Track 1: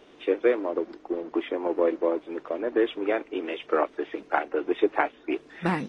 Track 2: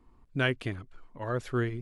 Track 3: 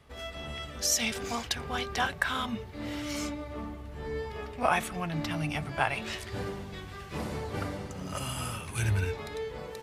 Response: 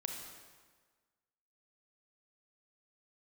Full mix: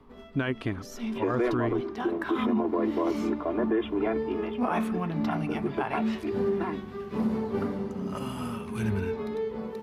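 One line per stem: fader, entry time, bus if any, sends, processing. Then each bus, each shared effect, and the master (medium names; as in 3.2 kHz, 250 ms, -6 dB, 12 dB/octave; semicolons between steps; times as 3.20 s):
3.91 s -4.5 dB -> 4.68 s -14 dB, 0.95 s, no send, comb 2.9 ms, depth 68%
+0.5 dB, 0.00 s, no send, none
-6.0 dB, 0.00 s, no send, de-hum 75.78 Hz, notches 34; small resonant body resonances 220/400 Hz, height 17 dB, ringing for 90 ms; auto duck -10 dB, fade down 0.25 s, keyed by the second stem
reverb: none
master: graphic EQ 250/1000/8000 Hz +7/+8/-8 dB; peak limiter -18 dBFS, peak gain reduction 10 dB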